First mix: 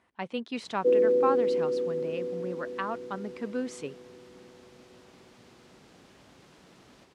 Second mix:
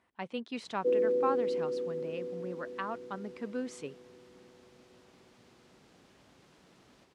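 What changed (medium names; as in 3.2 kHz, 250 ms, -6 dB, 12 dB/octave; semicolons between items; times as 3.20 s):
speech -4.0 dB; background -5.5 dB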